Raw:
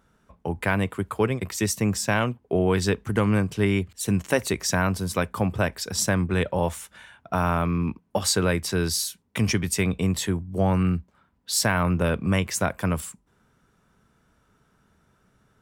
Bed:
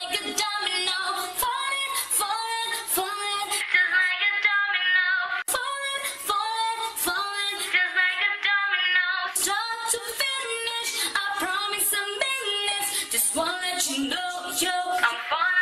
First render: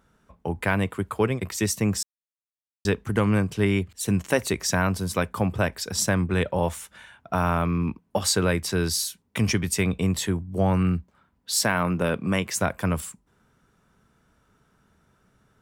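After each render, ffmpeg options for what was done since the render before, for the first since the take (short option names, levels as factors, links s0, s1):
-filter_complex "[0:a]asettb=1/sr,asplit=3[s0][s1][s2];[s0]atrim=end=11.634[s3];[s1]atrim=start=11.63:end=12.55,asetpts=PTS-STARTPTS,afade=t=in:d=0.004:c=qsin,afade=t=out:st=0.916:d=0.004:c=qsin,highpass=140[s4];[s2]atrim=start=12.546[s5];[s3][s4]acrossfade=d=0.004:c1=hsin:c2=qsin[s6];[s6][s5]acrossfade=d=0.004:c1=qsin:c2=hsin,asplit=3[s7][s8][s9];[s7]atrim=end=2.03,asetpts=PTS-STARTPTS,afade=t=out:st=2.026:d=0.004:c=hsin[s10];[s8]atrim=start=2.03:end=2.85,asetpts=PTS-STARTPTS,volume=0[s11];[s9]atrim=start=2.85,asetpts=PTS-STARTPTS,afade=t=in:d=0.004:c=hsin[s12];[s10][s11][s12]concat=n=3:v=0:a=1"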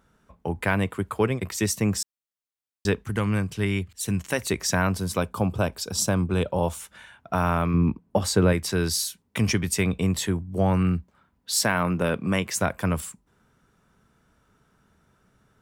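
-filter_complex "[0:a]asettb=1/sr,asplit=3[s0][s1][s2];[s0]atrim=end=3.024[s3];[s1]atrim=start=3.02:end=4.5,asetpts=PTS-STARTPTS,afade=t=in:d=0.004:c=qsin,afade=t=out:st=1.476:d=0.004:c=qsin,equalizer=f=470:w=0.4:g=-5.5[s4];[s2]atrim=start=4.496[s5];[s3][s4]acrossfade=d=0.004:c1=hsin:c2=qsin[s6];[s6][s5]acrossfade=d=0.004:c1=qsin:c2=hsin,asettb=1/sr,asplit=3[s7][s8][s9];[s7]atrim=end=5.174[s10];[s8]atrim=start=5.17:end=6.8,asetpts=PTS-STARTPTS,afade=t=in:d=0.004:c=qsin,afade=t=out:st=1.626:d=0.004:c=qsin,equalizer=f=1900:t=o:w=0.45:g=-12.5[s11];[s9]atrim=start=6.796[s12];[s10][s11]acrossfade=d=0.004:c1=hsin:c2=qsin[s13];[s13][s12]acrossfade=d=0.004:c1=qsin:c2=hsin,asettb=1/sr,asplit=3[s14][s15][s16];[s14]atrim=end=7.744[s17];[s15]atrim=start=7.74:end=8.53,asetpts=PTS-STARTPTS,afade=t=in:d=0.004:c=qsin,afade=t=out:st=0.786:d=0.004:c=qsin,tiltshelf=f=970:g=5[s18];[s16]atrim=start=8.526[s19];[s17][s18]acrossfade=d=0.004:c1=hsin:c2=qsin[s20];[s20][s19]acrossfade=d=0.004:c1=qsin:c2=hsin"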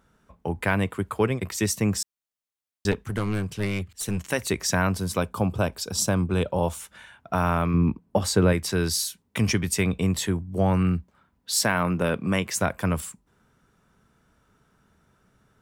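-filter_complex "[0:a]asettb=1/sr,asplit=3[s0][s1][s2];[s0]atrim=end=2.914[s3];[s1]atrim=start=2.91:end=4.18,asetpts=PTS-STARTPTS,afade=t=in:d=0.004:c=qsin,afade=t=out:st=1.266:d=0.004:c=qsin,aeval=exprs='clip(val(0),-1,0.0473)':c=same[s4];[s2]atrim=start=4.176[s5];[s3][s4]acrossfade=d=0.004:c1=hsin:c2=qsin[s6];[s6][s5]acrossfade=d=0.004:c1=qsin:c2=hsin"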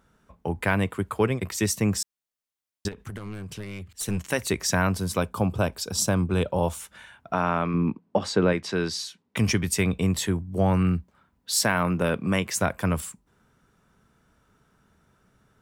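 -filter_complex "[0:a]asplit=3[s0][s1][s2];[s0]afade=t=out:st=2.87:d=0.02[s3];[s1]acompressor=threshold=0.0251:ratio=16:attack=3.2:release=140:knee=1:detection=peak,afade=t=in:st=2.87:d=0.02,afade=t=out:st=3.89:d=0.02[s4];[s2]afade=t=in:st=3.89:d=0.02[s5];[s3][s4][s5]amix=inputs=3:normalize=0,asettb=1/sr,asplit=3[s6][s7][s8];[s6]atrim=end=7.334[s9];[s7]atrim=start=7.33:end=9.37,asetpts=PTS-STARTPTS,afade=t=in:d=0.004:c=qsin,afade=t=out:st=2.036:d=0.004:c=qsin,highpass=170,lowpass=4700[s10];[s8]atrim=start=9.366[s11];[s9][s10]acrossfade=d=0.004:c1=hsin:c2=qsin[s12];[s12][s11]acrossfade=d=0.004:c1=qsin:c2=hsin"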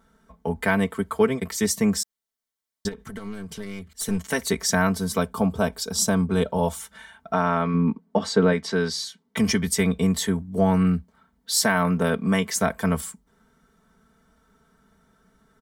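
-af "bandreject=f=2600:w=6,aecho=1:1:4.5:0.8"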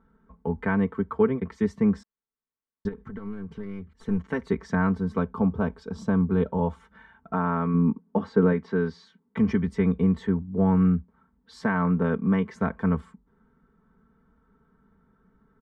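-af "lowpass=1200,equalizer=f=650:w=2.9:g=-10.5"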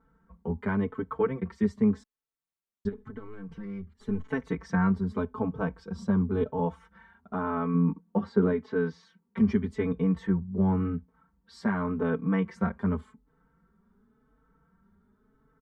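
-filter_complex "[0:a]asplit=2[s0][s1];[s1]adelay=4.1,afreqshift=0.9[s2];[s0][s2]amix=inputs=2:normalize=1"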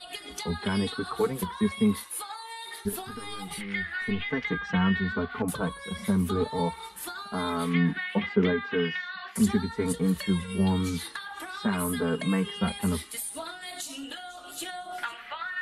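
-filter_complex "[1:a]volume=0.251[s0];[0:a][s0]amix=inputs=2:normalize=0"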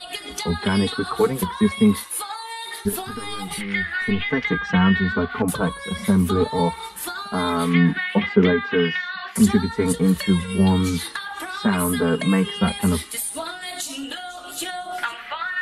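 -af "volume=2.37"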